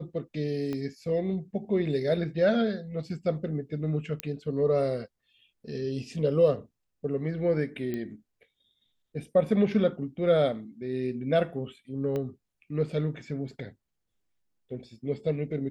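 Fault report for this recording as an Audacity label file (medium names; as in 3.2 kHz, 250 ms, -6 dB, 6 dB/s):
0.730000	0.730000	pop -22 dBFS
4.200000	4.200000	pop -14 dBFS
7.940000	7.940000	pop -21 dBFS
12.160000	12.160000	pop -21 dBFS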